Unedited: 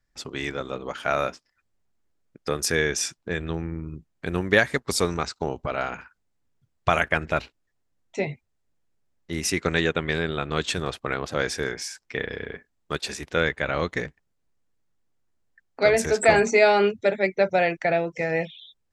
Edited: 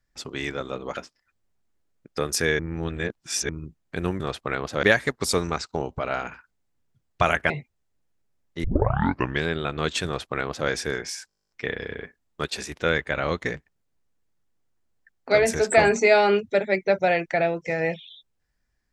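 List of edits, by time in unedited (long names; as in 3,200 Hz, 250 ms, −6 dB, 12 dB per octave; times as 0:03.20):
0:00.97–0:01.27: remove
0:02.89–0:03.79: reverse
0:07.17–0:08.23: remove
0:09.37: tape start 0.78 s
0:10.79–0:11.42: duplicate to 0:04.50
0:12.01: stutter 0.02 s, 12 plays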